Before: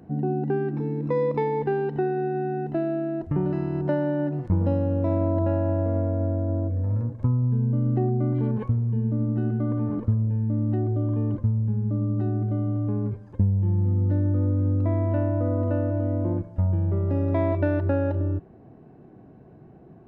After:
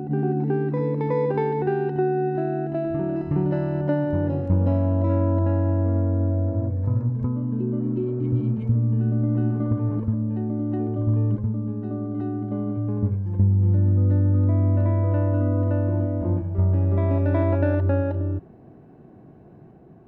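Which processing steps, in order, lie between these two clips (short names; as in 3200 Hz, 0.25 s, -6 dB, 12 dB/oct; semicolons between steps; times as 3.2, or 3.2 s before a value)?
spectral repair 7.82–8.7, 390–2100 Hz after; reverse echo 0.368 s -4.5 dB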